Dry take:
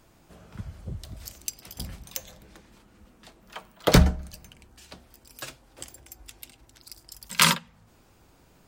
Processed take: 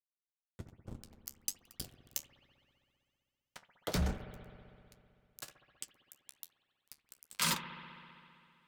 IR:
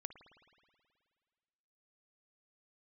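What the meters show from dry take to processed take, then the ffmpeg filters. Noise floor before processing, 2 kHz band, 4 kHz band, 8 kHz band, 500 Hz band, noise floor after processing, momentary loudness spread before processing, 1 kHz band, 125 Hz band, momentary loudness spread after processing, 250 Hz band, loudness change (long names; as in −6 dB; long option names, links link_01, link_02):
−59 dBFS, −14.0 dB, −12.5 dB, −9.5 dB, −16.0 dB, below −85 dBFS, 24 LU, −13.5 dB, −15.0 dB, 24 LU, −15.0 dB, −14.5 dB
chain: -filter_complex "[0:a]aeval=exprs='sgn(val(0))*max(abs(val(0))-0.0237,0)':channel_layout=same,areverse,acompressor=threshold=-28dB:ratio=6,areverse,flanger=delay=7.5:depth=8.6:regen=-57:speed=1.2:shape=triangular,asoftclip=type=hard:threshold=-29.5dB,bass=frequency=250:gain=0,treble=frequency=4000:gain=4[link_01];[1:a]atrim=start_sample=2205,asetrate=36603,aresample=44100[link_02];[link_01][link_02]afir=irnorm=-1:irlink=0,volume=7dB"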